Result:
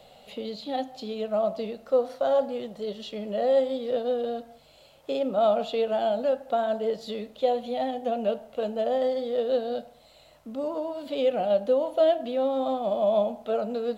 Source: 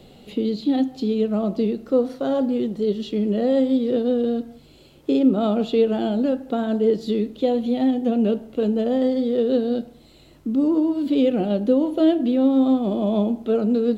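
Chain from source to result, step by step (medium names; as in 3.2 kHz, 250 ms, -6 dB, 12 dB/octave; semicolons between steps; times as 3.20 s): resonant low shelf 460 Hz -9.5 dB, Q 3; trim -2.5 dB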